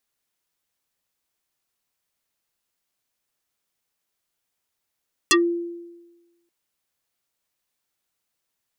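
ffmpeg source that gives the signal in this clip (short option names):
-f lavfi -i "aevalsrc='0.266*pow(10,-3*t/1.2)*sin(2*PI*343*t+6.9*pow(10,-3*t/0.12)*sin(2*PI*4.45*343*t))':d=1.18:s=44100"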